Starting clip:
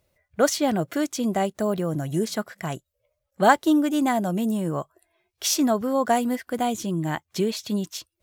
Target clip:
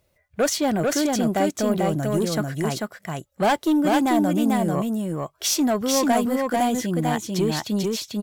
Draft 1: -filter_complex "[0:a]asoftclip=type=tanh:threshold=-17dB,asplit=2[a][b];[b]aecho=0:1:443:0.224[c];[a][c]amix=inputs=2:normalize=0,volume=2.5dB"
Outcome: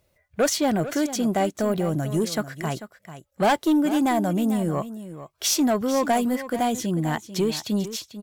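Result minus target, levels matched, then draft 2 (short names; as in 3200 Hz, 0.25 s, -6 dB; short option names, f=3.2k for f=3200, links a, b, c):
echo-to-direct -10.5 dB
-filter_complex "[0:a]asoftclip=type=tanh:threshold=-17dB,asplit=2[a][b];[b]aecho=0:1:443:0.75[c];[a][c]amix=inputs=2:normalize=0,volume=2.5dB"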